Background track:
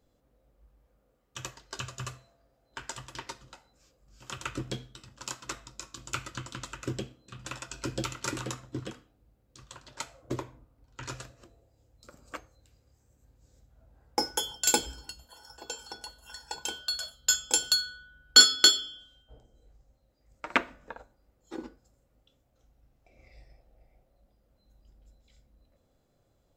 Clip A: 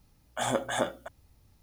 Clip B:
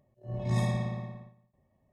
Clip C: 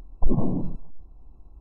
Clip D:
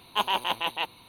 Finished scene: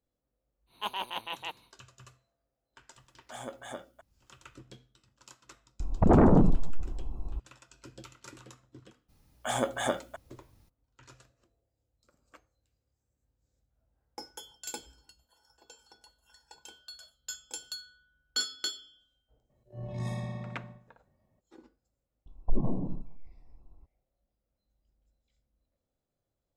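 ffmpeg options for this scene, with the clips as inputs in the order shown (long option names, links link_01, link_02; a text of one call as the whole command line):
ffmpeg -i bed.wav -i cue0.wav -i cue1.wav -i cue2.wav -i cue3.wav -filter_complex "[1:a]asplit=2[link_01][link_02];[3:a]asplit=2[link_03][link_04];[0:a]volume=-15.5dB[link_05];[link_03]aeval=exprs='0.447*sin(PI/2*6.31*val(0)/0.447)':channel_layout=same[link_06];[2:a]acompressor=threshold=-39dB:ratio=1.5:attack=8.5:release=368:knee=1:detection=peak[link_07];[link_04]bandreject=frequency=50:width_type=h:width=6,bandreject=frequency=100:width_type=h:width=6,bandreject=frequency=150:width_type=h:width=6,bandreject=frequency=200:width_type=h:width=6,bandreject=frequency=250:width_type=h:width=6,bandreject=frequency=300:width_type=h:width=6,bandreject=frequency=350:width_type=h:width=6,bandreject=frequency=400:width_type=h:width=6[link_08];[4:a]atrim=end=1.08,asetpts=PTS-STARTPTS,volume=-9dB,afade=type=in:duration=0.1,afade=type=out:start_time=0.98:duration=0.1,adelay=660[link_09];[link_01]atrim=end=1.62,asetpts=PTS-STARTPTS,volume=-13dB,afade=type=in:duration=0.004:curve=hsin,afade=type=out:start_time=1.616:duration=0.004:curve=hsin,adelay=2930[link_10];[link_06]atrim=end=1.6,asetpts=PTS-STARTPTS,volume=-8dB,afade=type=in:duration=0.004:curve=hsin,afade=type=out:start_time=1.596:duration=0.004:curve=hsin,adelay=5800[link_11];[link_02]atrim=end=1.62,asetpts=PTS-STARTPTS,volume=-1dB,afade=type=in:duration=0.02,afade=type=out:start_time=1.6:duration=0.02,adelay=9080[link_12];[link_07]atrim=end=1.92,asetpts=PTS-STARTPTS,volume=-1.5dB,afade=type=in:duration=0.02,afade=type=out:start_time=1.9:duration=0.02,adelay=19490[link_13];[link_08]atrim=end=1.6,asetpts=PTS-STARTPTS,volume=-6.5dB,afade=type=in:duration=0.004:curve=hsin,afade=type=out:start_time=1.596:duration=0.004:curve=hsin,adelay=22260[link_14];[link_05][link_09][link_10][link_11][link_12][link_13][link_14]amix=inputs=7:normalize=0" out.wav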